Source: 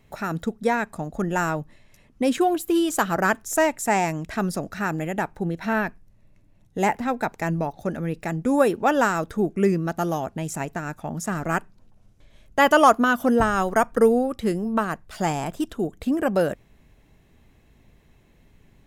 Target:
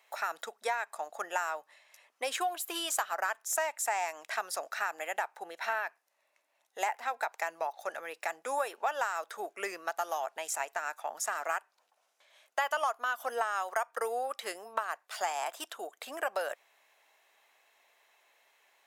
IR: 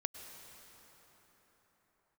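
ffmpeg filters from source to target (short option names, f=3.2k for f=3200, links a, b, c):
-af "highpass=f=670:w=0.5412,highpass=f=670:w=1.3066,acompressor=threshold=-29dB:ratio=5"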